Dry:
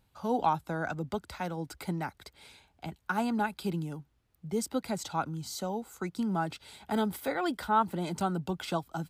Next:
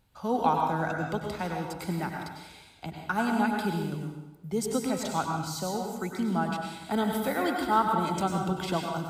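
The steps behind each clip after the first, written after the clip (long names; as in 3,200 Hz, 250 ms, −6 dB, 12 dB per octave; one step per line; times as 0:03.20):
dense smooth reverb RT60 0.99 s, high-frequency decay 0.9×, pre-delay 85 ms, DRR 1 dB
level +1.5 dB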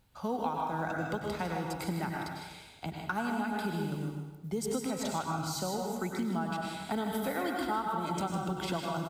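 downward compressor 6 to 1, threshold −30 dBFS, peak gain reduction 11 dB
log-companded quantiser 8 bits
on a send: single-tap delay 155 ms −9.5 dB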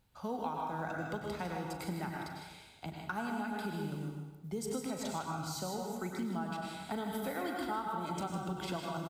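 double-tracking delay 39 ms −14 dB
level −4.5 dB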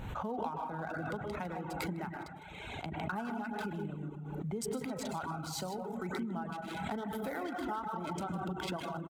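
adaptive Wiener filter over 9 samples
reverb reduction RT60 0.66 s
background raised ahead of every attack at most 27 dB per second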